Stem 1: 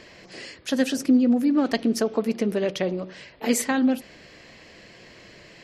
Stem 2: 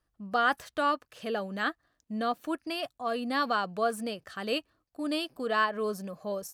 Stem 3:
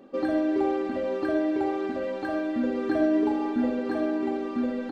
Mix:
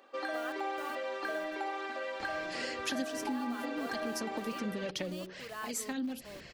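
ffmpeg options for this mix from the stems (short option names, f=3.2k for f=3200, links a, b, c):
-filter_complex "[0:a]acrossover=split=190|3000[a][b][c];[b]acompressor=threshold=-32dB:ratio=6[d];[a][d][c]amix=inputs=3:normalize=0,aphaser=in_gain=1:out_gain=1:delay=4.3:decay=0.37:speed=1.2:type=triangular,adelay=2200,volume=-0.5dB[e];[1:a]lowpass=7.5k,lowshelf=f=130:g=-11.5,acrusher=bits=5:mix=0:aa=0.000001,volume=-15.5dB,asplit=3[f][g][h];[f]atrim=end=1.55,asetpts=PTS-STARTPTS,afade=t=out:st=1.546:d=0.004:c=hsin[i];[g]atrim=start=1.55:end=2.94,asetpts=PTS-STARTPTS,volume=0[j];[h]atrim=start=2.94,asetpts=PTS-STARTPTS,afade=t=in:d=0.004:c=hsin[k];[i][j][k]concat=n=3:v=0:a=1,asplit=2[l][m];[2:a]highpass=1k,volume=2.5dB[n];[m]apad=whole_len=345485[o];[e][o]sidechaincompress=threshold=-49dB:ratio=4:attack=29:release=974[p];[p][l][n]amix=inputs=3:normalize=0,acompressor=threshold=-32dB:ratio=5"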